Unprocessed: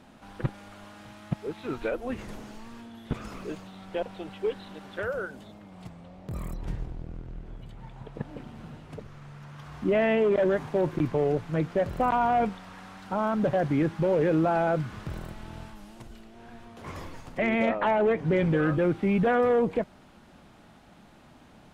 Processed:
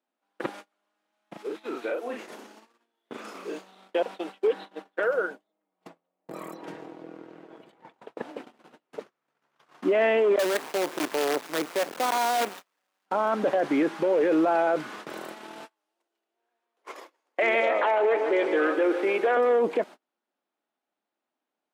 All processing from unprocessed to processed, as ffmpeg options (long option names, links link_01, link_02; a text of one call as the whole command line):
ffmpeg -i in.wav -filter_complex "[0:a]asettb=1/sr,asplit=3[link_01][link_02][link_03];[link_01]atrim=end=1.094[link_04];[link_02]atrim=start=1.09:end=3.88,asetpts=PTS-STARTPTS,afade=type=in:duration=0.004:curve=qsin,afade=type=out:start_time=2.786:duration=0.004:curve=qsin,asplit=2[link_05][link_06];[link_06]adelay=37,volume=-2.5dB[link_07];[link_05][link_07]amix=inputs=2:normalize=0,atrim=end_sample=123039,acompressor=threshold=-39dB:ratio=2:attack=3.2:release=140:knee=1:detection=peak[link_08];[link_03]atrim=start=3.876[link_09];[link_04][link_08]acrossfade=duration=0.004:curve1=hsin:curve2=qsin[link_10];[link_10][link_09]acrossfade=duration=0.004:curve1=qsin:curve2=hsin,asettb=1/sr,asplit=3[link_11][link_12][link_13];[link_11]atrim=end=4.474[link_14];[link_12]atrim=start=4.47:end=7.94,asetpts=PTS-STARTPTS,afade=type=in:duration=0.004:curve=qsin,afade=type=out:start_time=3.466:duration=0.004:curve=qsin,highshelf=frequency=3000:gain=-8,aecho=1:1:6.3:0.44,atrim=end_sample=153027[link_15];[link_13]atrim=start=7.936[link_16];[link_14][link_15]acrossfade=duration=0.004:curve1=hsin:curve2=qsin[link_17];[link_17][link_16]acrossfade=duration=0.004:curve1=qsin:curve2=hsin,asettb=1/sr,asplit=3[link_18][link_19][link_20];[link_18]atrim=end=10.394[link_21];[link_19]atrim=start=10.39:end=13.06,asetpts=PTS-STARTPTS,afade=type=in:duration=0.004:curve=qsin,afade=type=out:start_time=2.666:duration=0.004:curve=qsin,lowpass=3100,aemphasis=mode=production:type=75fm,acrusher=bits=5:dc=4:mix=0:aa=0.000001[link_22];[link_20]atrim=start=13.056[link_23];[link_21][link_22]acrossfade=duration=0.004:curve1=hsin:curve2=qsin[link_24];[link_24][link_23]acrossfade=duration=0.004:curve1=qsin:curve2=hsin,asettb=1/sr,asplit=3[link_25][link_26][link_27];[link_25]atrim=end=15.654[link_28];[link_26]atrim=start=15.65:end=19.37,asetpts=PTS-STARTPTS,afade=type=in:duration=0.004:curve=qsin,afade=type=out:start_time=3.716:duration=0.004:curve=qsin,highpass=frequency=320:width=0.5412,highpass=frequency=320:width=1.3066,aecho=1:1:147|294|441|588|735|882:0.251|0.143|0.0816|0.0465|0.0265|0.0151,atrim=end_sample=164052[link_29];[link_27]atrim=start=19.366[link_30];[link_28][link_29]acrossfade=duration=0.004:curve1=hsin:curve2=qsin[link_31];[link_31][link_30]acrossfade=duration=0.004:curve1=qsin:curve2=hsin,agate=range=-36dB:threshold=-40dB:ratio=16:detection=peak,highpass=frequency=300:width=0.5412,highpass=frequency=300:width=1.3066,alimiter=limit=-22.5dB:level=0:latency=1:release=14,volume=6.5dB" out.wav